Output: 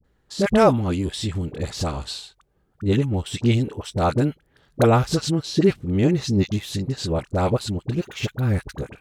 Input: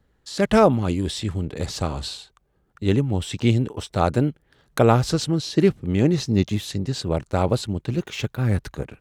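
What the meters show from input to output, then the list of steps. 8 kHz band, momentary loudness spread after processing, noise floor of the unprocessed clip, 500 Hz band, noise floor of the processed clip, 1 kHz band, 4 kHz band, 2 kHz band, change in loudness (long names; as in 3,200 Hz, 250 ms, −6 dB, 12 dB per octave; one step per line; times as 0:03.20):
0.0 dB, 11 LU, −66 dBFS, 0.0 dB, −65 dBFS, 0.0 dB, 0.0 dB, 0.0 dB, 0.0 dB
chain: all-pass dispersion highs, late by 44 ms, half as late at 760 Hz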